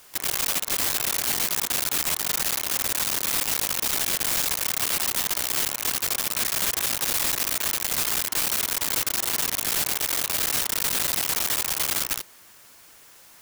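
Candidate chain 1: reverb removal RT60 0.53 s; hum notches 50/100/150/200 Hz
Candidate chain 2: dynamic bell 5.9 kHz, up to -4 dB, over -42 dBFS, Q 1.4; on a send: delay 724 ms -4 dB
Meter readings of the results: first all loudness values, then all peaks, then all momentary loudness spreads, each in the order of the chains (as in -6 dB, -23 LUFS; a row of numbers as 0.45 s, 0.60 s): -24.0 LUFS, -22.0 LUFS; -17.5 dBFS, -13.0 dBFS; 1 LU, 2 LU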